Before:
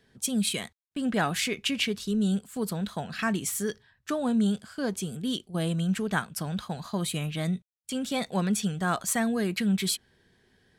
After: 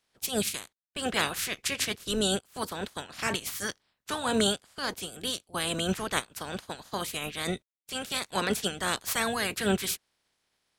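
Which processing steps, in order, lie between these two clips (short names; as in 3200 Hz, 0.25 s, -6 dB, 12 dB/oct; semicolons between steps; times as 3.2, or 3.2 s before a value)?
spectral limiter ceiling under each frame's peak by 25 dB; upward expander 1.5:1, over -47 dBFS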